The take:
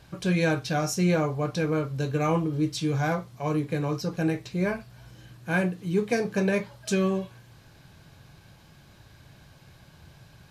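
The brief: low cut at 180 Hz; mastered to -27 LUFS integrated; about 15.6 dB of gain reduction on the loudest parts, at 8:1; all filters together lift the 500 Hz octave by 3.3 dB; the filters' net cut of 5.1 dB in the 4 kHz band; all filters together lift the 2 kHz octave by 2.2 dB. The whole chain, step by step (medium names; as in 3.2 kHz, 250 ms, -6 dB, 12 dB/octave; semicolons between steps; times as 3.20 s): high-pass 180 Hz; peaking EQ 500 Hz +4 dB; peaking EQ 2 kHz +4.5 dB; peaking EQ 4 kHz -8 dB; compression 8:1, threshold -34 dBFS; trim +11.5 dB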